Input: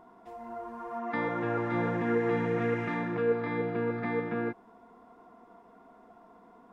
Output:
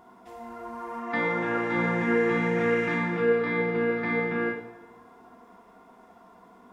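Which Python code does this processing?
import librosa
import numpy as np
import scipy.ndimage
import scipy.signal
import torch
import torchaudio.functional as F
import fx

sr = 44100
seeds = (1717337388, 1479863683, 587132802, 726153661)

y = fx.high_shelf(x, sr, hz=2200.0, db=8.0)
y = fx.rev_double_slope(y, sr, seeds[0], early_s=0.75, late_s=2.2, knee_db=-18, drr_db=0.5)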